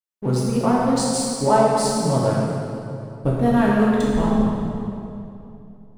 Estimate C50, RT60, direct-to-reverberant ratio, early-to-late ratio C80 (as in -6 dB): -2.0 dB, 2.7 s, -6.0 dB, -0.5 dB